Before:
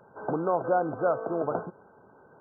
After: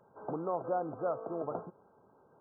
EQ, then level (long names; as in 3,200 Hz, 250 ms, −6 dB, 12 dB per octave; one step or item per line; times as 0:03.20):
notch filter 1,500 Hz, Q 7.5
−8.0 dB